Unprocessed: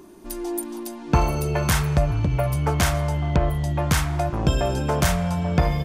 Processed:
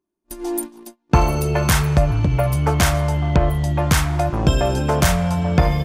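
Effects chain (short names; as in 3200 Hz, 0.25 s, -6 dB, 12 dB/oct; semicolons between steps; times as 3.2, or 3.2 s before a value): gate -30 dBFS, range -39 dB; gain +4 dB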